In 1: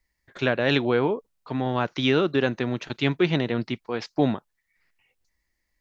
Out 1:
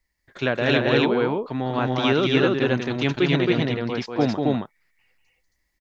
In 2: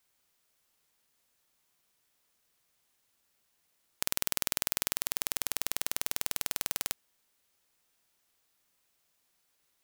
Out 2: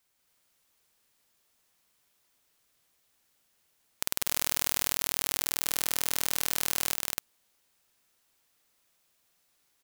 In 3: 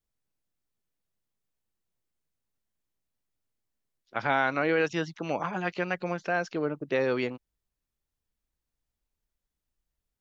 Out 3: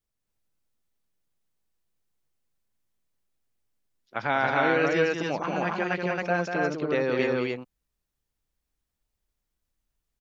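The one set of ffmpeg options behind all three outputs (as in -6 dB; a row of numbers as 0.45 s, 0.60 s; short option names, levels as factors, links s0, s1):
-af "aecho=1:1:192.4|271.1:0.562|0.891"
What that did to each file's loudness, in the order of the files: +3.0 LU, +3.0 LU, +3.0 LU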